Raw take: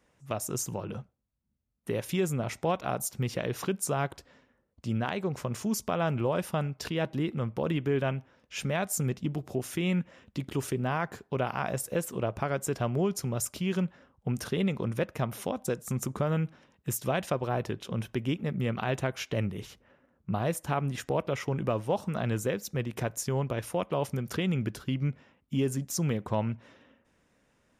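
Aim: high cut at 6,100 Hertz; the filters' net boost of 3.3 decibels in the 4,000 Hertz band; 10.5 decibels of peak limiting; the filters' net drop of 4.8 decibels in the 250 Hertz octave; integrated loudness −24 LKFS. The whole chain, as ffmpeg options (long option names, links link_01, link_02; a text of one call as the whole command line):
ffmpeg -i in.wav -af "lowpass=6100,equalizer=frequency=250:width_type=o:gain=-7.5,equalizer=frequency=4000:width_type=o:gain=5.5,volume=12dB,alimiter=limit=-12.5dB:level=0:latency=1" out.wav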